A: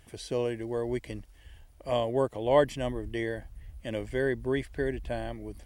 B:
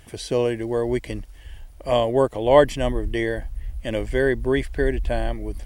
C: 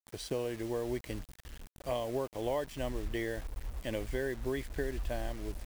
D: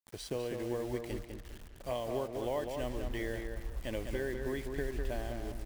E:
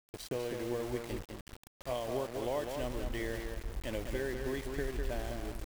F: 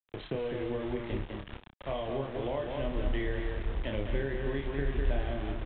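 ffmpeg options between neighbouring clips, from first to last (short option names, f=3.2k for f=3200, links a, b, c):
-af "asubboost=boost=3.5:cutoff=59,volume=8.5dB"
-af "acompressor=threshold=-22dB:ratio=8,aeval=exprs='sgn(val(0))*max(abs(val(0))-0.00398,0)':c=same,acrusher=bits=6:mix=0:aa=0.000001,volume=-8dB"
-filter_complex "[0:a]asplit=2[a][b];[b]adelay=201,lowpass=f=2.9k:p=1,volume=-5dB,asplit=2[c][d];[d]adelay=201,lowpass=f=2.9k:p=1,volume=0.33,asplit=2[e][f];[f]adelay=201,lowpass=f=2.9k:p=1,volume=0.33,asplit=2[g][h];[h]adelay=201,lowpass=f=2.9k:p=1,volume=0.33[i];[a][c][e][g][i]amix=inputs=5:normalize=0,volume=-2dB"
-af "aeval=exprs='val(0)*gte(abs(val(0)),0.0075)':c=same"
-filter_complex "[0:a]aecho=1:1:29|60:0.631|0.237,acrossover=split=190[a][b];[b]acompressor=threshold=-42dB:ratio=2[c];[a][c]amix=inputs=2:normalize=0,volume=5.5dB" -ar 8000 -c:a pcm_mulaw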